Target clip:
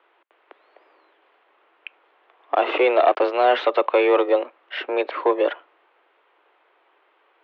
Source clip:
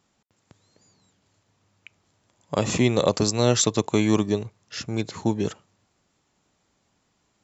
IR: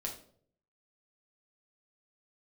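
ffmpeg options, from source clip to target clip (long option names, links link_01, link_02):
-filter_complex "[0:a]asplit=2[link_01][link_02];[link_02]highpass=frequency=720:poles=1,volume=21dB,asoftclip=type=tanh:threshold=-4dB[link_03];[link_01][link_03]amix=inputs=2:normalize=0,lowpass=frequency=1700:poles=1,volume=-6dB,asettb=1/sr,asplit=3[link_04][link_05][link_06];[link_04]atrim=end=2.554[link_07];[link_05]atrim=start=2.55:end=3.44,asetpts=PTS-STARTPTS,afade=type=in:duration=0.004:curve=qsin,afade=type=out:start_time=0.886:duration=0.004:curve=qsin,aeval=exprs='sgn(val(0))*max(abs(val(0))-0.0178,0)':channel_layout=same[link_08];[link_06]atrim=start=3.436[link_09];[link_07][link_08]acrossfade=duration=0.004:curve1=hsin:curve2=qsin[link_10];[link_10][link_09]acrossfade=duration=0.004:curve1=qsin:curve2=hsin,highpass=frequency=210:width_type=q:width=0.5412,highpass=frequency=210:width_type=q:width=1.307,lowpass=frequency=3100:width_type=q:width=0.5176,lowpass=frequency=3100:width_type=q:width=0.7071,lowpass=frequency=3100:width_type=q:width=1.932,afreqshift=130"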